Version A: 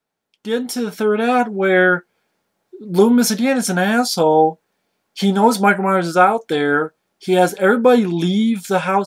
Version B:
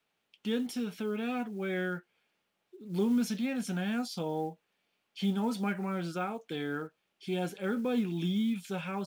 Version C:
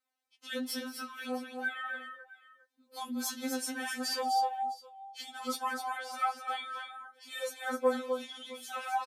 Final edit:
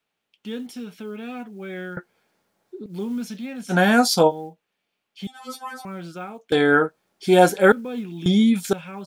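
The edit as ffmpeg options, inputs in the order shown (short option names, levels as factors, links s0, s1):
-filter_complex "[0:a]asplit=4[s0][s1][s2][s3];[1:a]asplit=6[s4][s5][s6][s7][s8][s9];[s4]atrim=end=1.972[s10];[s0]atrim=start=1.968:end=2.862[s11];[s5]atrim=start=2.858:end=3.74[s12];[s1]atrim=start=3.68:end=4.32[s13];[s6]atrim=start=4.26:end=5.272[s14];[2:a]atrim=start=5.268:end=5.852[s15];[s7]atrim=start=5.848:end=6.522[s16];[s2]atrim=start=6.518:end=7.722[s17];[s8]atrim=start=7.718:end=8.262[s18];[s3]atrim=start=8.258:end=8.732[s19];[s9]atrim=start=8.728[s20];[s10][s11]acrossfade=d=0.004:c1=hsin:c2=hsin[s21];[s21][s12]acrossfade=d=0.004:c1=hsin:c2=hsin[s22];[s22][s13]acrossfade=d=0.06:c1=tri:c2=tri[s23];[s23][s14]acrossfade=d=0.06:c1=tri:c2=tri[s24];[s24][s15]acrossfade=d=0.004:c1=hsin:c2=hsin[s25];[s25][s16]acrossfade=d=0.004:c1=hsin:c2=hsin[s26];[s26][s17]acrossfade=d=0.004:c1=hsin:c2=hsin[s27];[s27][s18]acrossfade=d=0.004:c1=hsin:c2=hsin[s28];[s28][s19]acrossfade=d=0.004:c1=hsin:c2=hsin[s29];[s29][s20]acrossfade=d=0.004:c1=hsin:c2=hsin"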